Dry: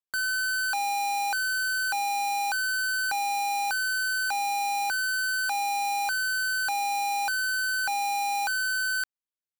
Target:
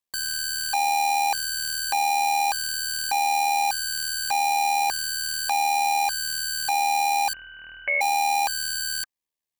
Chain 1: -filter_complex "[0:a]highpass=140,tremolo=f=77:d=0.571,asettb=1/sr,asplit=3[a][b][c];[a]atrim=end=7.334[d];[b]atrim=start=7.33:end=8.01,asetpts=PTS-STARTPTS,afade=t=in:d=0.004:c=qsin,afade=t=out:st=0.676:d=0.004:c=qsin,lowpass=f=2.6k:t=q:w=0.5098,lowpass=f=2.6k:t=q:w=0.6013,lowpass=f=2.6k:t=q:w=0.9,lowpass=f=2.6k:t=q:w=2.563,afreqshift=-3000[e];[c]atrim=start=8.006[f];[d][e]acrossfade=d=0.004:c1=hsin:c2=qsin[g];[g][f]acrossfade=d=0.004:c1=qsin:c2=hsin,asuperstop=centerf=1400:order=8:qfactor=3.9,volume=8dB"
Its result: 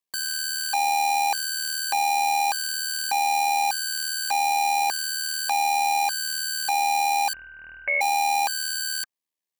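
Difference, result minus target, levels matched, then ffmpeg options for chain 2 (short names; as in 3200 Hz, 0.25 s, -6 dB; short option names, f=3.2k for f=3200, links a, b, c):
125 Hz band -6.5 dB
-filter_complex "[0:a]tremolo=f=77:d=0.571,asettb=1/sr,asplit=3[a][b][c];[a]atrim=end=7.334[d];[b]atrim=start=7.33:end=8.01,asetpts=PTS-STARTPTS,afade=t=in:d=0.004:c=qsin,afade=t=out:st=0.676:d=0.004:c=qsin,lowpass=f=2.6k:t=q:w=0.5098,lowpass=f=2.6k:t=q:w=0.6013,lowpass=f=2.6k:t=q:w=0.9,lowpass=f=2.6k:t=q:w=2.563,afreqshift=-3000[e];[c]atrim=start=8.006[f];[d][e]acrossfade=d=0.004:c1=hsin:c2=qsin[g];[g][f]acrossfade=d=0.004:c1=qsin:c2=hsin,asuperstop=centerf=1400:order=8:qfactor=3.9,volume=8dB"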